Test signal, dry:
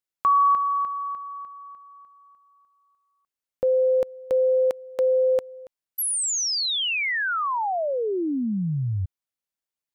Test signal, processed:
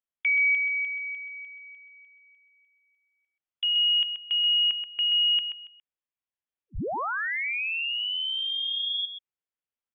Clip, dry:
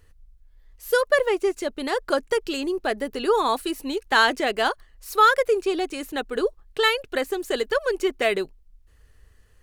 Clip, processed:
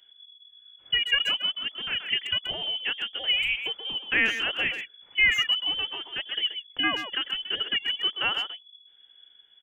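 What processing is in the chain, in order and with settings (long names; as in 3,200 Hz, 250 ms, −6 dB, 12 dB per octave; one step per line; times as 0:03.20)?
voice inversion scrambler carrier 3,400 Hz
far-end echo of a speakerphone 130 ms, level −7 dB
level −5 dB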